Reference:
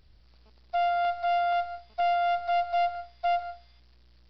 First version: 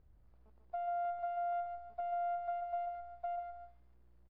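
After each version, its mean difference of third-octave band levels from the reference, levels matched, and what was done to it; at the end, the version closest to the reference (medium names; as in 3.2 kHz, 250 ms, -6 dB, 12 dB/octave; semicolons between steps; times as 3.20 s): 4.0 dB: low-pass 1.1 kHz 12 dB/octave; compression, threshold -32 dBFS, peak gain reduction 8 dB; delay 139 ms -7 dB; trim -6 dB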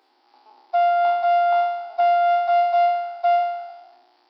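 3.0 dB: spectral sustain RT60 0.99 s; rippled Chebyshev high-pass 250 Hz, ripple 9 dB; peaking EQ 820 Hz +15 dB 0.26 oct; trim +9 dB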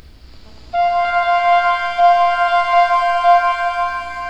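6.5 dB: peaking EQ 270 Hz +8 dB 0.3 oct; upward compressor, threshold -43 dBFS; pitch-shifted reverb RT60 3.6 s, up +7 st, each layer -8 dB, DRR -3.5 dB; trim +8.5 dB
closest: second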